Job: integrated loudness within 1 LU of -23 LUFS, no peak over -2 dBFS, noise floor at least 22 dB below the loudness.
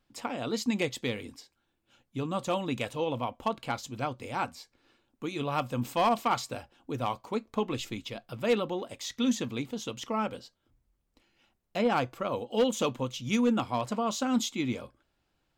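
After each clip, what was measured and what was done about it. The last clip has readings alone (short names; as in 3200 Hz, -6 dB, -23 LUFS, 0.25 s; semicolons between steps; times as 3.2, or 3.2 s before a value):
clipped 0.2%; flat tops at -18.5 dBFS; loudness -31.5 LUFS; peak -18.5 dBFS; loudness target -23.0 LUFS
-> clip repair -18.5 dBFS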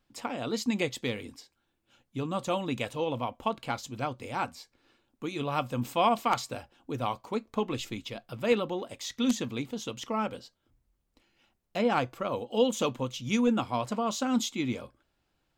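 clipped 0.0%; loudness -31.5 LUFS; peak -9.5 dBFS; loudness target -23.0 LUFS
-> gain +8.5 dB; limiter -2 dBFS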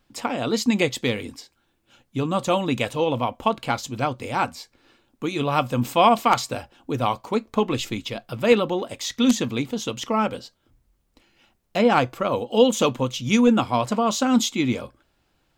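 loudness -23.0 LUFS; peak -2.0 dBFS; noise floor -69 dBFS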